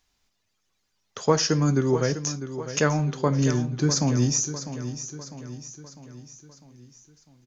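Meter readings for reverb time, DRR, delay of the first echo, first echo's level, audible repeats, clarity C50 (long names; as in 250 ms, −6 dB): no reverb audible, no reverb audible, 651 ms, −11.5 dB, 5, no reverb audible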